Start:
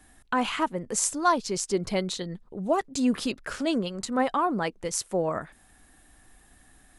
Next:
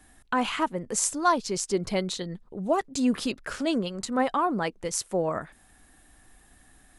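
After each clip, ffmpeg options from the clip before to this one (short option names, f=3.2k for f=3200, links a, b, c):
-af anull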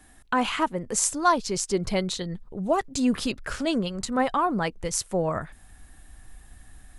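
-af "asubboost=boost=3:cutoff=150,volume=2dB"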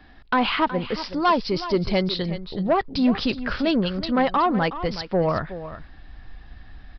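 -af "aresample=11025,asoftclip=type=tanh:threshold=-18dB,aresample=44100,aecho=1:1:370:0.224,volume=5.5dB"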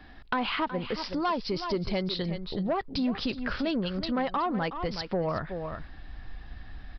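-af "acompressor=threshold=-30dB:ratio=2.5"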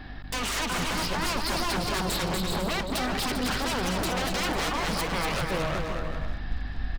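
-af "aeval=exprs='0.0224*(abs(mod(val(0)/0.0224+3,4)-2)-1)':c=same,aeval=exprs='val(0)+0.00316*(sin(2*PI*50*n/s)+sin(2*PI*2*50*n/s)/2+sin(2*PI*3*50*n/s)/3+sin(2*PI*4*50*n/s)/4+sin(2*PI*5*50*n/s)/5)':c=same,aecho=1:1:240|396|497.4|563.3|606.2:0.631|0.398|0.251|0.158|0.1,volume=7.5dB"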